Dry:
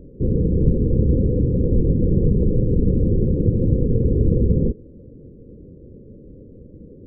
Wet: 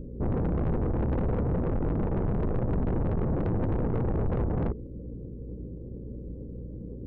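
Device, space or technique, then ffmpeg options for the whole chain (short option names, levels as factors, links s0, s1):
valve amplifier with mains hum: -af "aeval=exprs='(tanh(17.8*val(0)+0.2)-tanh(0.2))/17.8':c=same,aeval=exprs='val(0)+0.01*(sin(2*PI*60*n/s)+sin(2*PI*2*60*n/s)/2+sin(2*PI*3*60*n/s)/3+sin(2*PI*4*60*n/s)/4+sin(2*PI*5*60*n/s)/5)':c=same"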